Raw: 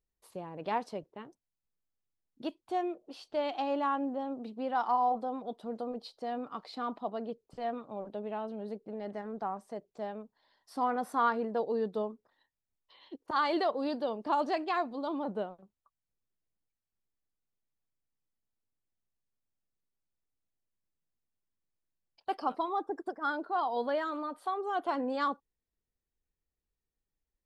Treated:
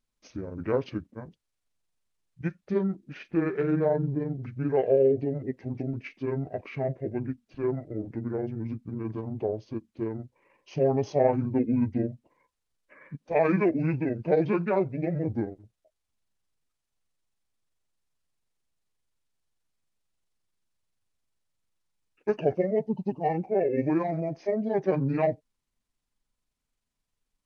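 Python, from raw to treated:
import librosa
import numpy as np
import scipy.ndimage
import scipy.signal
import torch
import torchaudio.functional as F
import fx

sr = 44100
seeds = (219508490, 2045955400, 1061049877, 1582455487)

y = fx.pitch_heads(x, sr, semitones=-10.5)
y = y * 10.0 ** (7.5 / 20.0)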